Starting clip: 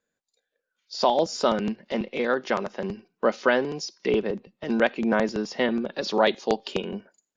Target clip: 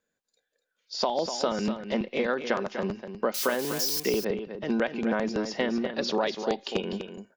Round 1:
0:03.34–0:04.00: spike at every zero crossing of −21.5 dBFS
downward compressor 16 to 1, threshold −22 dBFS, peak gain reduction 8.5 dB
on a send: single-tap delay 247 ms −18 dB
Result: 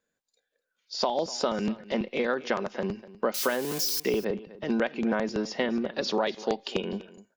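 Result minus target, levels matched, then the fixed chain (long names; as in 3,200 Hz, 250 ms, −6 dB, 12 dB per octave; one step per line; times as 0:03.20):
echo-to-direct −9 dB
0:03.34–0:04.00: spike at every zero crossing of −21.5 dBFS
downward compressor 16 to 1, threshold −22 dBFS, peak gain reduction 8.5 dB
on a send: single-tap delay 247 ms −9 dB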